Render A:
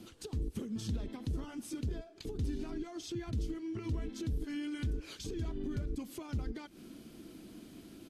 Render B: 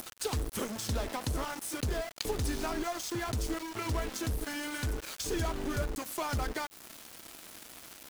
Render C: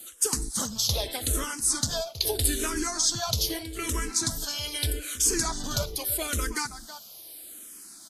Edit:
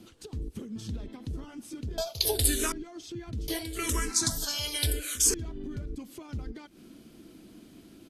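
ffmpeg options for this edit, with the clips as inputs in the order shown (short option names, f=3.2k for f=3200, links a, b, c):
-filter_complex "[2:a]asplit=2[a][b];[0:a]asplit=3[c][d][e];[c]atrim=end=1.982[f];[a]atrim=start=1.978:end=2.722[g];[d]atrim=start=2.718:end=3.482[h];[b]atrim=start=3.478:end=5.342[i];[e]atrim=start=5.338[j];[f][g]acrossfade=d=0.004:c1=hsin:c2=hsin[k];[k][h]acrossfade=d=0.004:c1=hsin:c2=hsin[l];[l][i]acrossfade=d=0.004:c1=hsin:c2=hsin[m];[m][j]acrossfade=d=0.004:c1=hsin:c2=hsin"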